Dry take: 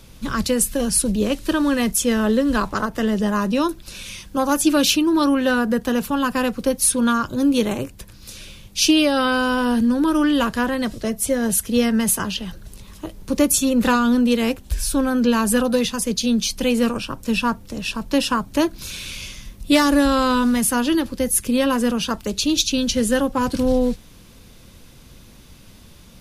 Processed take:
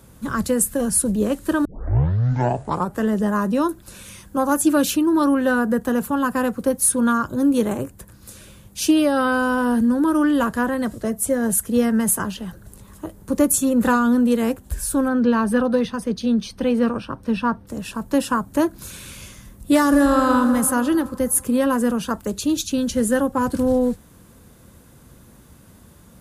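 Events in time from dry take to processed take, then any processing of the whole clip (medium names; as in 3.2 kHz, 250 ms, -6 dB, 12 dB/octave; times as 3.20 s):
1.65 s: tape start 1.40 s
15.08–17.67 s: Savitzky-Golay filter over 15 samples
19.82–20.34 s: reverb throw, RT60 2.5 s, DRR 4.5 dB
whole clip: high-pass 56 Hz; high-order bell 3.6 kHz -10 dB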